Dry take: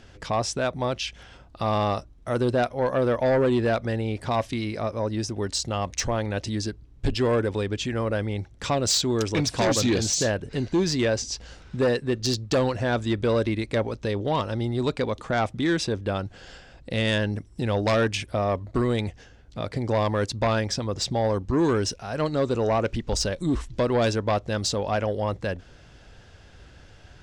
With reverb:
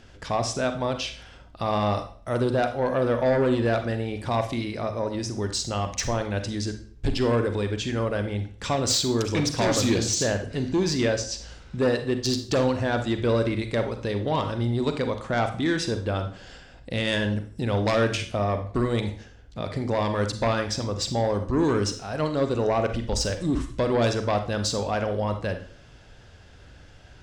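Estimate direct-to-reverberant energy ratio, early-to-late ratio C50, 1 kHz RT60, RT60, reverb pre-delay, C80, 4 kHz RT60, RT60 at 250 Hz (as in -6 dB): 7.0 dB, 9.5 dB, 0.45 s, 0.45 s, 35 ms, 14.5 dB, 0.45 s, 0.50 s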